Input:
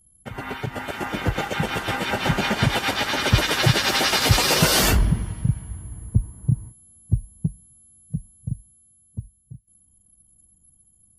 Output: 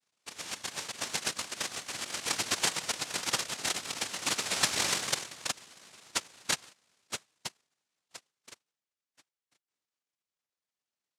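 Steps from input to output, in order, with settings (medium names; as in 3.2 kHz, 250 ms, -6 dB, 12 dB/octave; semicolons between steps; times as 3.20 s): band-pass sweep 270 Hz -> 2.2 kHz, 6.93–9.63 s; rotary cabinet horn 0.6 Hz; noise-vocoded speech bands 1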